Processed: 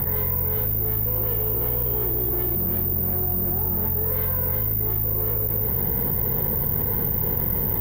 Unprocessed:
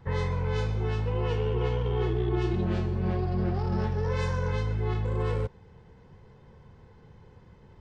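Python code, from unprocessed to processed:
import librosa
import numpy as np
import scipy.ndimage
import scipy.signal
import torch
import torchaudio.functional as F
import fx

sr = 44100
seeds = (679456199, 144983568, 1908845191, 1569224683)

p1 = fx.octave_divider(x, sr, octaves=2, level_db=-5.0)
p2 = fx.highpass(p1, sr, hz=52.0, slope=6)
p3 = fx.peak_eq(p2, sr, hz=1300.0, db=-5.0, octaves=0.51)
p4 = fx.notch(p3, sr, hz=2600.0, q=13.0)
p5 = np.clip(p4, -10.0 ** (-26.0 / 20.0), 10.0 ** (-26.0 / 20.0))
p6 = fx.air_absorb(p5, sr, metres=300.0)
p7 = p6 + fx.echo_feedback(p6, sr, ms=188, feedback_pct=36, wet_db=-21.5, dry=0)
p8 = (np.kron(scipy.signal.resample_poly(p7, 1, 3), np.eye(3)[0]) * 3)[:len(p7)]
y = fx.env_flatten(p8, sr, amount_pct=100)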